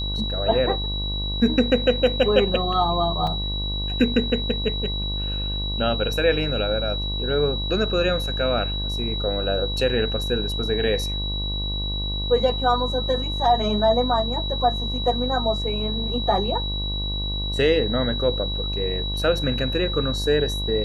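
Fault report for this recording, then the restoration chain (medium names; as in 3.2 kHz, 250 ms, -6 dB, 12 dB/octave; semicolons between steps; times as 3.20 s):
buzz 50 Hz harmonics 23 -28 dBFS
whine 3.9 kHz -28 dBFS
3.27 s: dropout 3.1 ms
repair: band-stop 3.9 kHz, Q 30; de-hum 50 Hz, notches 23; interpolate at 3.27 s, 3.1 ms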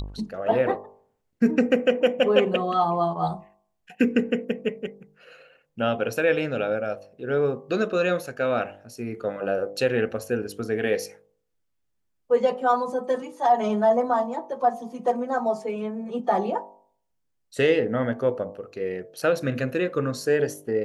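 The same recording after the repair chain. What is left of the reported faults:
nothing left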